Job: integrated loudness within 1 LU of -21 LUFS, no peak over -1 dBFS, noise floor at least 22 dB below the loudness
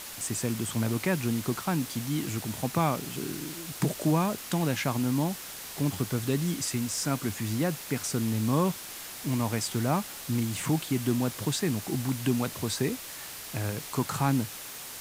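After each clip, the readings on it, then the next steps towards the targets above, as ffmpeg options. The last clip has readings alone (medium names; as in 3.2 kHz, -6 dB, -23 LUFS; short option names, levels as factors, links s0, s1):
noise floor -42 dBFS; noise floor target -52 dBFS; loudness -30.0 LUFS; peak level -12.0 dBFS; loudness target -21.0 LUFS
-> -af "afftdn=nr=10:nf=-42"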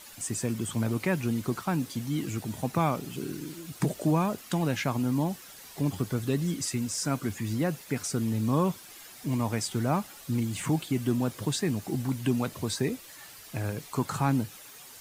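noise floor -48 dBFS; noise floor target -52 dBFS
-> -af "afftdn=nr=6:nf=-48"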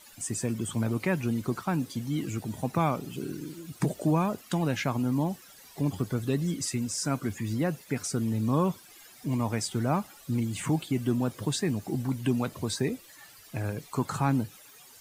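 noise floor -53 dBFS; loudness -30.0 LUFS; peak level -12.5 dBFS; loudness target -21.0 LUFS
-> -af "volume=2.82"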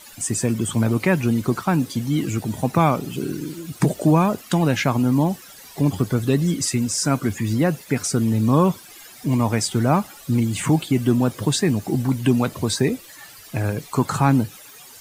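loudness -21.0 LUFS; peak level -3.5 dBFS; noise floor -44 dBFS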